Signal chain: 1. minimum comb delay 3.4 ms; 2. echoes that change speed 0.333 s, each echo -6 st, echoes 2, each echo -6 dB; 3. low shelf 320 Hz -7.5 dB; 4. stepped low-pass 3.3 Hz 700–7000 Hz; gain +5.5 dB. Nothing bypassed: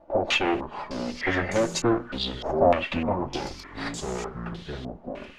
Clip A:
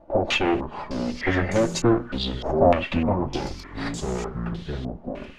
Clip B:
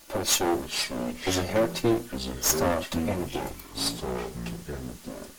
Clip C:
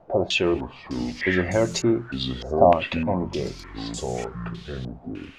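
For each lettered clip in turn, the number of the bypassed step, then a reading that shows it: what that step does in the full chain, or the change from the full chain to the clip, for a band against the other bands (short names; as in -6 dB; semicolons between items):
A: 3, 125 Hz band +6.0 dB; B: 4, 8 kHz band +12.0 dB; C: 1, crest factor change +1.5 dB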